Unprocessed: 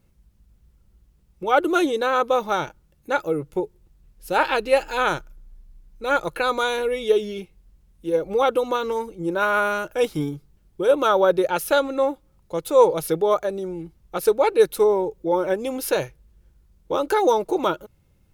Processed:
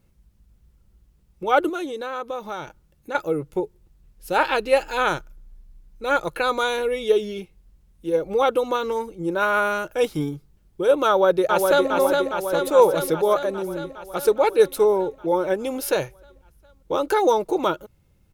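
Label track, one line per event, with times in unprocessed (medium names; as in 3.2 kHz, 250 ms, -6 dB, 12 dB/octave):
1.690000	3.150000	compression 2:1, threshold -33 dBFS
11.080000	11.900000	echo throw 410 ms, feedback 70%, level -3.5 dB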